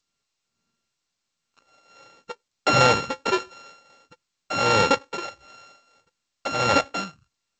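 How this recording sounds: a buzz of ramps at a fixed pitch in blocks of 32 samples; tremolo triangle 1.5 Hz, depth 85%; G.722

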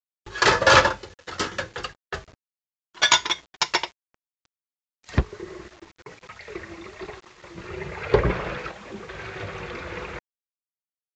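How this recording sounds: chopped level 0.66 Hz, depth 65%, duty 75%; a quantiser's noise floor 8-bit, dither none; AAC

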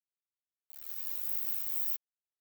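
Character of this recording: tremolo triangle 2.3 Hz, depth 45%; a quantiser's noise floor 8-bit, dither none; a shimmering, thickened sound

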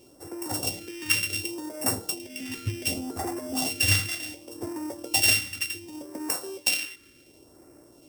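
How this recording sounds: a buzz of ramps at a fixed pitch in blocks of 16 samples; phasing stages 2, 0.68 Hz, lowest notch 700–2900 Hz

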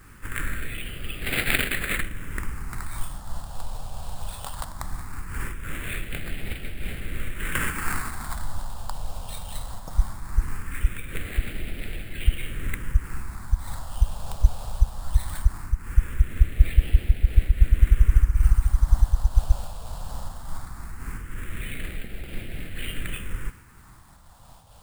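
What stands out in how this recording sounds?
aliases and images of a low sample rate 6000 Hz, jitter 0%; phasing stages 4, 0.19 Hz, lowest notch 340–1000 Hz; a quantiser's noise floor 10-bit, dither none; noise-modulated level

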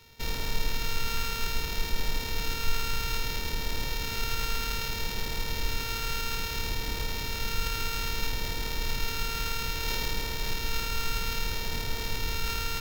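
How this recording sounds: a buzz of ramps at a fixed pitch in blocks of 32 samples; phasing stages 2, 0.61 Hz, lowest notch 660–1500 Hz; aliases and images of a low sample rate 9200 Hz, jitter 0%; AAC

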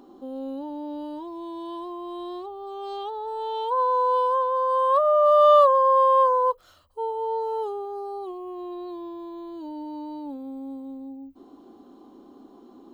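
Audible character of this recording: noise floor -52 dBFS; spectral tilt +3.5 dB/oct

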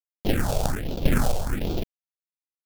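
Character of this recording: a quantiser's noise floor 6-bit, dither none; random-step tremolo 3.8 Hz, depth 70%; aliases and images of a low sample rate 1100 Hz, jitter 20%; phasing stages 4, 1.3 Hz, lowest notch 280–1800 Hz

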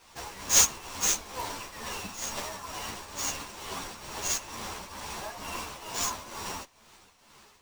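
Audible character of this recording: a quantiser's noise floor 10-bit, dither triangular; tremolo triangle 2.2 Hz, depth 70%; aliases and images of a low sample rate 13000 Hz, jitter 20%; a shimmering, thickened sound

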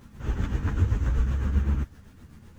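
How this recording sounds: a quantiser's noise floor 10-bit, dither none; tremolo triangle 7.8 Hz, depth 60%; a shimmering, thickened sound

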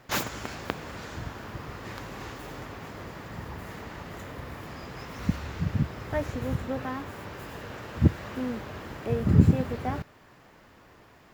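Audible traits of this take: noise floor -55 dBFS; spectral tilt -6.5 dB/oct

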